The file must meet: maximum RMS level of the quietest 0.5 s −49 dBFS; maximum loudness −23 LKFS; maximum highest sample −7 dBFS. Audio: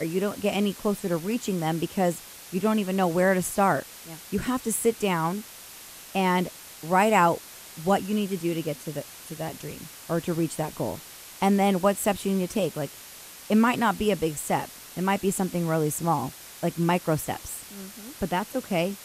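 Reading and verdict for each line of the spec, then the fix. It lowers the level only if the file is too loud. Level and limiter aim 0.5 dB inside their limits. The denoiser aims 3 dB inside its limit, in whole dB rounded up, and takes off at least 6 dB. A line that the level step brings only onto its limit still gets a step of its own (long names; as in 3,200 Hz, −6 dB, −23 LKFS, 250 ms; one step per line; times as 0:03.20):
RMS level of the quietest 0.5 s −45 dBFS: out of spec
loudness −26.5 LKFS: in spec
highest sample −8.0 dBFS: in spec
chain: broadband denoise 7 dB, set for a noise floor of −45 dBFS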